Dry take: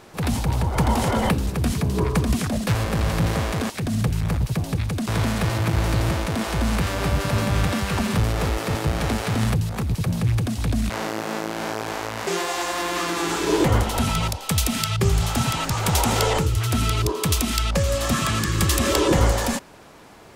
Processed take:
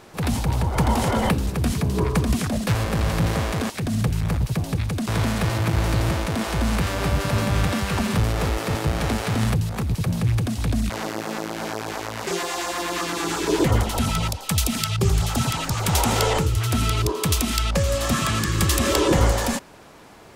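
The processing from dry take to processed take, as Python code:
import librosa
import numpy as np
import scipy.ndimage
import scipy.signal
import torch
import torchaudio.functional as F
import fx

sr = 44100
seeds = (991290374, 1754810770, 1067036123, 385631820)

y = fx.filter_lfo_notch(x, sr, shape='saw_down', hz=8.6, low_hz=290.0, high_hz=3700.0, q=1.4, at=(10.8, 15.9))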